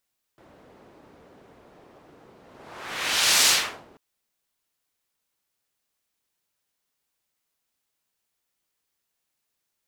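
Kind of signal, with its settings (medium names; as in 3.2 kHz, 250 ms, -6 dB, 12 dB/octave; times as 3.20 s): whoosh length 3.59 s, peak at 3.08 s, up 1.12 s, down 0.46 s, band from 450 Hz, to 5.2 kHz, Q 0.78, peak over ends 35 dB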